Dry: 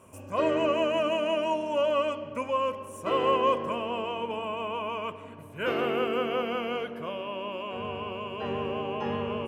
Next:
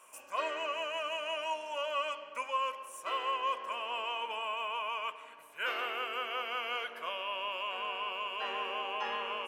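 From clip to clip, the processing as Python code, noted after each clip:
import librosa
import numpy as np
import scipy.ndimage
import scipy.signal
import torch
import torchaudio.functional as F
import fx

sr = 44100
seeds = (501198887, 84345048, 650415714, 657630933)

y = scipy.signal.sosfilt(scipy.signal.butter(2, 1100.0, 'highpass', fs=sr, output='sos'), x)
y = fx.rider(y, sr, range_db=4, speed_s=0.5)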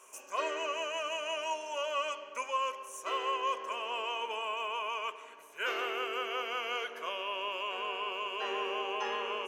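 y = fx.graphic_eq_31(x, sr, hz=(100, 160, 400, 6300), db=(-4, -4, 11, 12))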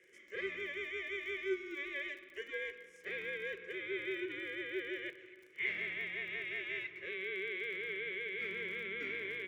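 y = x * np.sin(2.0 * np.pi * 570.0 * np.arange(len(x)) / sr)
y = fx.double_bandpass(y, sr, hz=910.0, octaves=2.5)
y = fx.dmg_crackle(y, sr, seeds[0], per_s=30.0, level_db=-57.0)
y = y * librosa.db_to_amplitude(7.5)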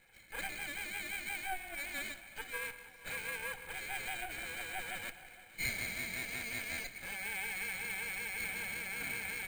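y = fx.lower_of_two(x, sr, delay_ms=1.3)
y = fx.echo_feedback(y, sr, ms=466, feedback_pct=51, wet_db=-17.5)
y = np.repeat(scipy.signal.resample_poly(y, 1, 4), 4)[:len(y)]
y = y * librosa.db_to_amplitude(2.0)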